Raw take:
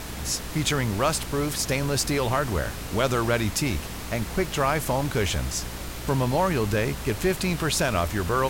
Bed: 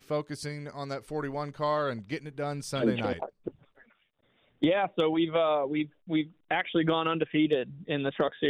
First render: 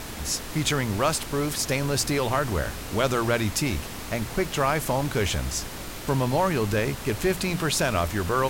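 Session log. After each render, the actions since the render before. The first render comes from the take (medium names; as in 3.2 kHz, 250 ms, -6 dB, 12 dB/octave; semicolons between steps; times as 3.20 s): de-hum 60 Hz, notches 3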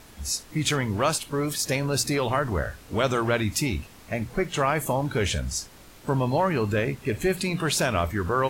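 noise print and reduce 13 dB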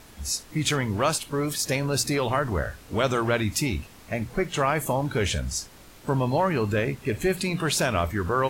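no audible change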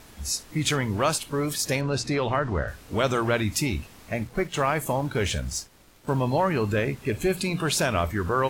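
1.81–2.68 s: distance through air 92 m; 4.22–6.22 s: companding laws mixed up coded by A; 7.12–7.72 s: band-stop 1.9 kHz, Q 7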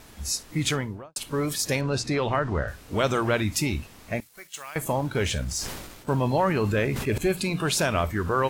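0.63–1.16 s: studio fade out; 4.20–4.76 s: pre-emphasis filter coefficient 0.97; 5.39–7.18 s: decay stretcher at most 44 dB/s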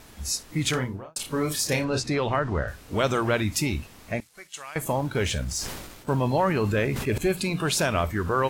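0.70–2.00 s: doubling 32 ms -5 dB; 4.12–4.80 s: low-pass 10 kHz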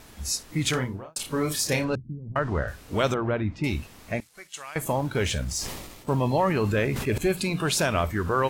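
1.95–2.36 s: four-pole ladder low-pass 230 Hz, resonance 35%; 3.14–3.64 s: tape spacing loss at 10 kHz 42 dB; 5.50–6.53 s: band-stop 1.5 kHz, Q 6.1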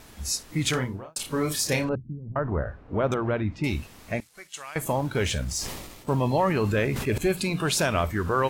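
1.89–3.12 s: low-pass 1.2 kHz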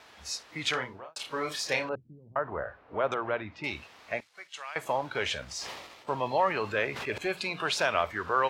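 high-pass 67 Hz; three-band isolator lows -17 dB, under 480 Hz, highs -19 dB, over 5.2 kHz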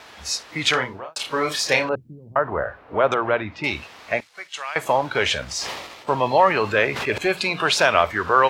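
trim +10 dB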